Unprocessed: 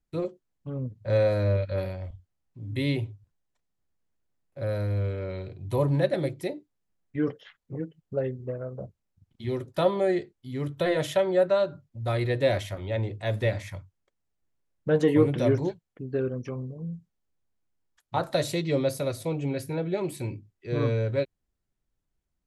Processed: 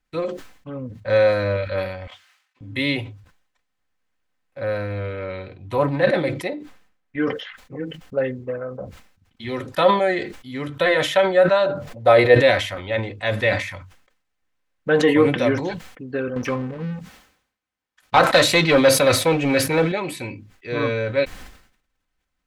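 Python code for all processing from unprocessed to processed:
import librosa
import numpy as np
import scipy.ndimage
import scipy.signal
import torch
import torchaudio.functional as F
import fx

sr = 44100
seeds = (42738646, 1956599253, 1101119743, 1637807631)

y = fx.chain(x, sr, fx.highpass(hz=1500.0, slope=12),
    fx.high_shelf(hz=8000.0, db=-10.5),
    fx.transient(attack_db=9, sustain_db=-11), at=(2.07, 2.61))
y = fx.chain(y, sr, fx.high_shelf(hz=3500.0, db=-6.0),
    fx.doppler_dist(depth_ms=0.13), at=(4.6, 7.18))
y = fx.chain(y, sr, fx.peak_eq(hz=570.0, db=12.5, octaves=1.2),
    fx.sustainer(db_per_s=42.0), at=(11.66, 12.35))
y = fx.chain(y, sr, fx.highpass(hz=43.0, slope=6),
    fx.leveller(passes=2), at=(16.36, 19.92))
y = fx.peak_eq(y, sr, hz=1900.0, db=12.5, octaves=2.9)
y = y + 0.38 * np.pad(y, (int(3.9 * sr / 1000.0), 0))[:len(y)]
y = fx.sustainer(y, sr, db_per_s=90.0)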